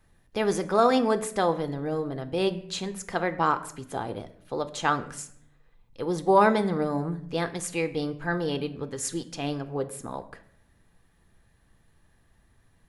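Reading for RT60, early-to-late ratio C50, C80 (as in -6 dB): 0.65 s, 15.0 dB, 17.5 dB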